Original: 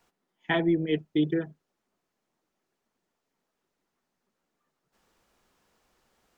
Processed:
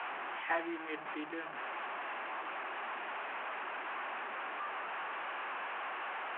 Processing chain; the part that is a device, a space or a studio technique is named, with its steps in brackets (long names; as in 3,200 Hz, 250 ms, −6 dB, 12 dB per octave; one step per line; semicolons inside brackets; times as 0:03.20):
digital answering machine (band-pass filter 310–3,400 Hz; linear delta modulator 16 kbit/s, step −29.5 dBFS; loudspeaker in its box 460–3,100 Hz, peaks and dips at 470 Hz −5 dB, 800 Hz +5 dB, 1,100 Hz +6 dB, 1,600 Hz +5 dB, 2,600 Hz +4 dB)
level −7.5 dB